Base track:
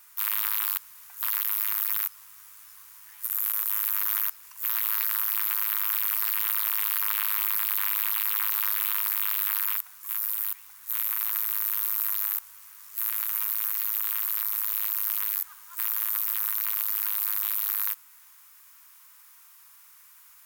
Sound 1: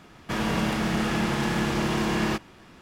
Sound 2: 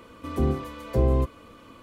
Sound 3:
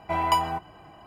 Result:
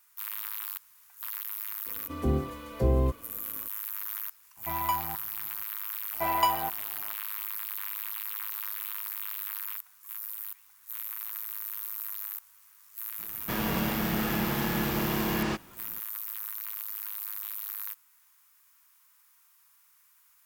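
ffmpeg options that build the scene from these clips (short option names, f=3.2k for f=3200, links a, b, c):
-filter_complex "[3:a]asplit=2[a][b];[0:a]volume=-9.5dB[c];[a]aecho=1:1:0.9:0.51[d];[b]equalizer=f=97:w=0.45:g=-7.5[e];[2:a]atrim=end=1.82,asetpts=PTS-STARTPTS,volume=-3dB,afade=t=in:d=0.004:c=hsin,afade=t=out:st=1.816:d=0.004:c=hsin,adelay=1860[f];[d]atrim=end=1.06,asetpts=PTS-STARTPTS,volume=-9.5dB,afade=t=in:d=0.004:c=hsin,afade=t=out:st=1.056:d=0.004:c=hsin,adelay=201537S[g];[e]atrim=end=1.06,asetpts=PTS-STARTPTS,volume=-2dB,afade=t=in:d=0.05,afade=t=out:st=1.01:d=0.05,adelay=6110[h];[1:a]atrim=end=2.81,asetpts=PTS-STARTPTS,volume=-4dB,afade=t=in:d=0.004:c=hsin,afade=t=out:st=2.806:d=0.004:c=hsin,adelay=13190[i];[c][f][g][h][i]amix=inputs=5:normalize=0"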